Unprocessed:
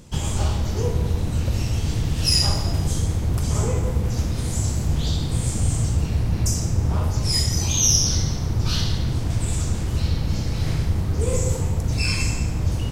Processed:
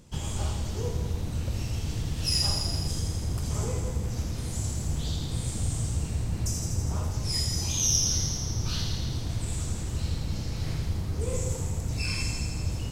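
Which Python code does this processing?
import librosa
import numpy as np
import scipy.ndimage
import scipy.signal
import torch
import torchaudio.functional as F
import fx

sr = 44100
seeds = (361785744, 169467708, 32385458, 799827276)

y = fx.echo_wet_highpass(x, sr, ms=82, feedback_pct=77, hz=3200.0, wet_db=-5)
y = y * 10.0 ** (-8.0 / 20.0)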